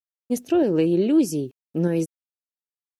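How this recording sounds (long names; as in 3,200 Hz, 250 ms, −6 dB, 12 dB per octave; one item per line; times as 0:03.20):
tremolo saw up 1.6 Hz, depth 30%
a quantiser's noise floor 12 bits, dither none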